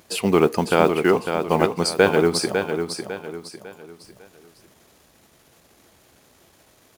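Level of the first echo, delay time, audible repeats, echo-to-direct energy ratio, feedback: −7.0 dB, 551 ms, 4, −6.5 dB, 37%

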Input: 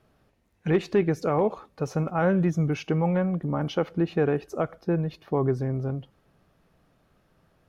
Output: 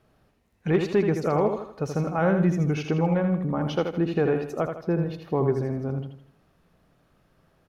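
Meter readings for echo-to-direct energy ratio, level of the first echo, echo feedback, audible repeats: −6.0 dB, −6.5 dB, 39%, 4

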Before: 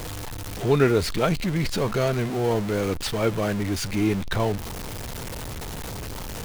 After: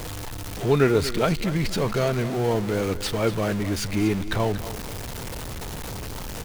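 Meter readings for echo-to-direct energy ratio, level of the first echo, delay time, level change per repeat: −13.5 dB, −14.0 dB, 237 ms, −11.0 dB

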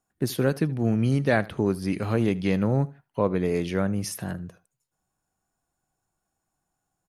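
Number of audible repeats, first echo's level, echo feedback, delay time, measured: 2, −21.0 dB, 20%, 77 ms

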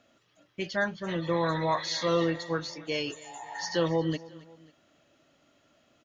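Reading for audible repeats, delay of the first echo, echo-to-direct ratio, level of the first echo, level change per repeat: 2, 272 ms, −19.0 dB, −20.0 dB, −6.0 dB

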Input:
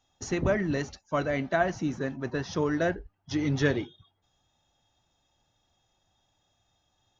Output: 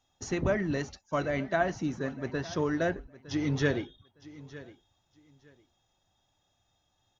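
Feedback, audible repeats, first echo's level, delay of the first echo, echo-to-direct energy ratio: 20%, 2, −18.0 dB, 910 ms, −18.0 dB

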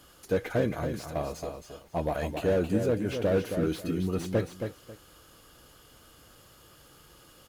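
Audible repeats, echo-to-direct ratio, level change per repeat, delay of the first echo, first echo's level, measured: 2, −7.0 dB, −13.0 dB, 271 ms, −7.0 dB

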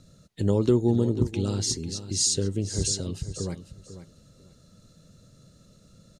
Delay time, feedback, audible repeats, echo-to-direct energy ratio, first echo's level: 496 ms, 19%, 2, −12.5 dB, −12.5 dB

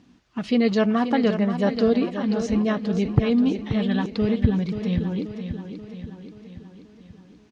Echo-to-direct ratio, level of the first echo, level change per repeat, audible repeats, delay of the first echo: −7.5 dB, −9.0 dB, −5.0 dB, 6, 532 ms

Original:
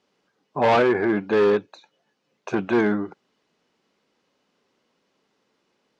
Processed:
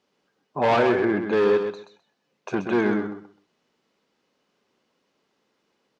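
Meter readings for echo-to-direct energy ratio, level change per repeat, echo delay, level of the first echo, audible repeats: −7.0 dB, −14.5 dB, 129 ms, −7.0 dB, 2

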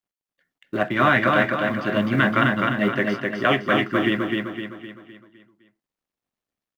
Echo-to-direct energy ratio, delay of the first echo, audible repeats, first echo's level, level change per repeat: −2.0 dB, 256 ms, 5, −3.0 dB, −6.5 dB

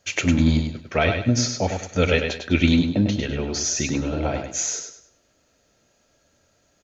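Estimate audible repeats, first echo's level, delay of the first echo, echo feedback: 3, −6.0 dB, 101 ms, 31%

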